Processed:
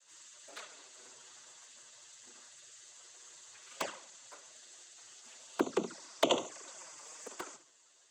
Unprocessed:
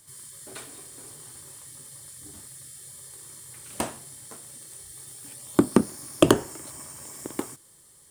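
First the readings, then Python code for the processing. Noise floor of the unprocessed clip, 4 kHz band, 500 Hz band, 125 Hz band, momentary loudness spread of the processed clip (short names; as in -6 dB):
-55 dBFS, -4.0 dB, -9.5 dB, -23.5 dB, 19 LU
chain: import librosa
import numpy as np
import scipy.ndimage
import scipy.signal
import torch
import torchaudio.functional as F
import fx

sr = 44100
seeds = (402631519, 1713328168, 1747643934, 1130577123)

p1 = scipy.signal.sosfilt(scipy.signal.butter(2, 580.0, 'highpass', fs=sr, output='sos'), x)
p2 = p1 + fx.room_flutter(p1, sr, wall_m=11.9, rt60_s=0.36, dry=0)
p3 = fx.noise_vocoder(p2, sr, seeds[0], bands=16)
p4 = fx.env_flanger(p3, sr, rest_ms=11.7, full_db=-26.5)
y = F.gain(torch.from_numpy(p4), -2.0).numpy()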